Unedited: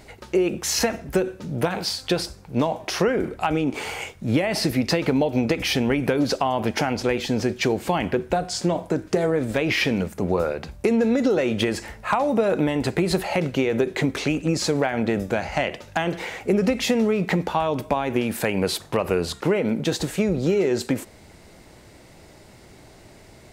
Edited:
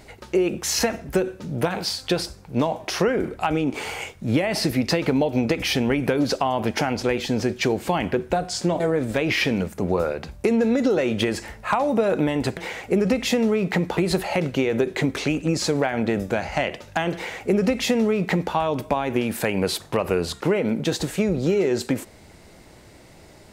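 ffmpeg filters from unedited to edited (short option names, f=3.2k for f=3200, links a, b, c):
-filter_complex "[0:a]asplit=4[a][b][c][d];[a]atrim=end=8.802[e];[b]atrim=start=9.198:end=12.972[f];[c]atrim=start=16.138:end=17.542[g];[d]atrim=start=12.968[h];[e][f]acrossfade=d=0.004:c1=hsin:c2=hsin[i];[i][g]acrossfade=d=0.004:c1=hsin:c2=hsin[j];[j][h]acrossfade=d=0.004:c1=hsin:c2=hsin"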